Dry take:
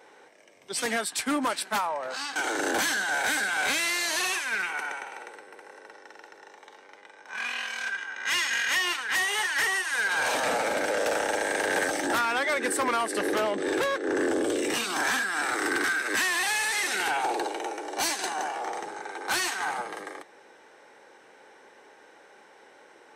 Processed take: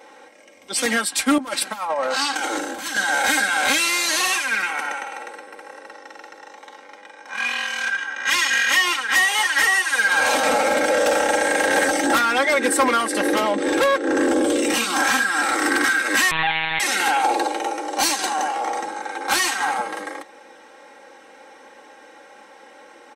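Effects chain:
notch filter 1,700 Hz, Q 21
comb filter 3.7 ms, depth 70%
0:01.38–0:02.97: compressor whose output falls as the input rises −30 dBFS, ratio −0.5
0:16.31–0:16.80: one-pitch LPC vocoder at 8 kHz 160 Hz
level +6 dB

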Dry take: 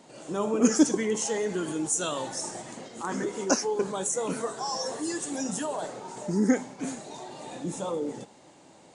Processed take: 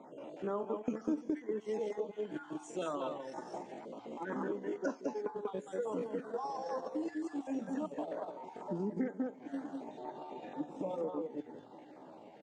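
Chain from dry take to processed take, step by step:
time-frequency cells dropped at random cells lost 25%
high-pass filter 42 Hz 12 dB per octave
high-frequency loss of the air 90 metres
mains-hum notches 60/120 Hz
single-tap delay 141 ms −3 dB
auto-filter notch saw down 2.9 Hz 950–3,000 Hz
three-way crossover with the lows and the highs turned down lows −13 dB, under 190 Hz, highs −17 dB, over 2,700 Hz
feedback delay network reverb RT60 0.41 s, low-frequency decay 1.2×, high-frequency decay 0.3×, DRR 17.5 dB
tempo change 0.72×
downward compressor 4 to 1, threshold −46 dBFS, peak gain reduction 26 dB
noise gate −46 dBFS, range −7 dB
level +9 dB

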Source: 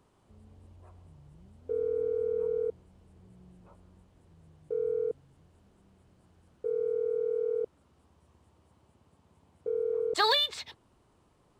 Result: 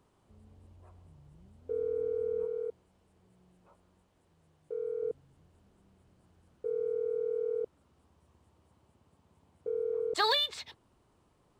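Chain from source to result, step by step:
0:02.45–0:05.03: low-shelf EQ 260 Hz −11 dB
level −2.5 dB

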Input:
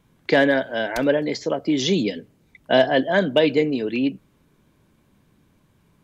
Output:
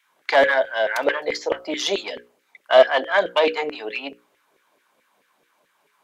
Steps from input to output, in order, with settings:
one-sided soft clipper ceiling −13 dBFS
auto-filter high-pass saw down 4.6 Hz 450–2,100 Hz
mains-hum notches 60/120/180/240/300/360/420/480/540 Hz
level +1 dB

